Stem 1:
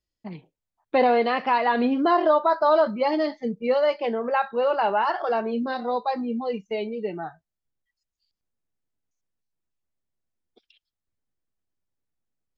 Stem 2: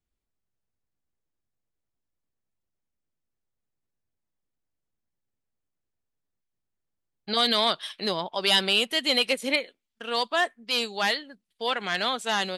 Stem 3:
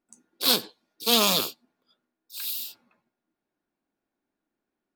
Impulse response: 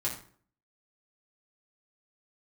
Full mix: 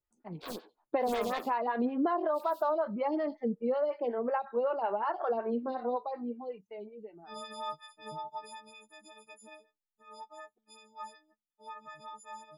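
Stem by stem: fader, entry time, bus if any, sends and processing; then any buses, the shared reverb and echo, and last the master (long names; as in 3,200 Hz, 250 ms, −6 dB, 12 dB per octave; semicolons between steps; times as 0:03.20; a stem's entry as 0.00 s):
−2.0 dB, 0.00 s, no send, downward compressor 6 to 1, threshold −23 dBFS, peak gain reduction 8.5 dB; automatic ducking −16 dB, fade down 1.35 s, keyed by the second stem
0:08.01 −6 dB → 0:08.77 −15 dB, 0.00 s, no send, every partial snapped to a pitch grid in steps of 6 semitones; downward compressor, threshold −17 dBFS, peak gain reduction 7 dB; octave-band graphic EQ 125/250/500/1,000/2,000/4,000/8,000 Hz +7/−8/−11/+8/−10/−9/+4 dB
−8.5 dB, 0.00 s, no send, noise gate with hold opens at −59 dBFS; high-pass filter 210 Hz; wrap-around overflow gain 11.5 dB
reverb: not used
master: low-pass filter 1,600 Hz 6 dB per octave; phaser with staggered stages 5.4 Hz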